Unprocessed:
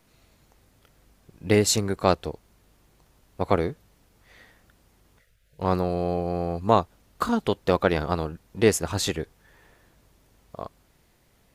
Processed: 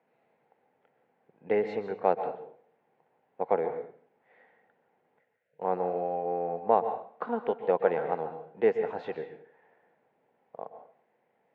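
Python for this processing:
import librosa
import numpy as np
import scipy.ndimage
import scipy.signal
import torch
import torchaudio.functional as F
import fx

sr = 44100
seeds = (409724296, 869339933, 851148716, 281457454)

y = fx.cabinet(x, sr, low_hz=190.0, low_slope=24, high_hz=2200.0, hz=(200.0, 300.0, 480.0, 800.0, 1200.0), db=(-4, -8, 7, 9, -7))
y = fx.rev_plate(y, sr, seeds[0], rt60_s=0.51, hf_ratio=0.95, predelay_ms=115, drr_db=8.5)
y = y * librosa.db_to_amplitude(-7.5)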